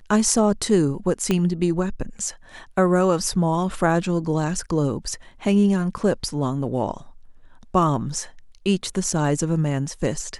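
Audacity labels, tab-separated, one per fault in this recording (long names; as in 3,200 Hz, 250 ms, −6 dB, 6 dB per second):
1.310000	1.310000	click −8 dBFS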